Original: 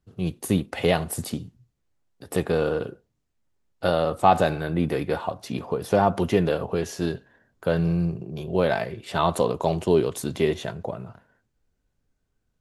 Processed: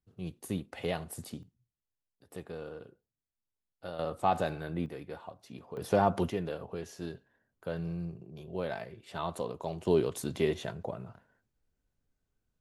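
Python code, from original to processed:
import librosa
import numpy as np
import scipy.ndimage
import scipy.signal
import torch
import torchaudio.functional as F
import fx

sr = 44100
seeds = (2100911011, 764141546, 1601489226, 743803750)

y = fx.gain(x, sr, db=fx.steps((0.0, -12.5), (1.43, -19.0), (3.99, -10.5), (4.86, -17.0), (5.77, -6.0), (6.3, -13.5), (9.85, -6.5)))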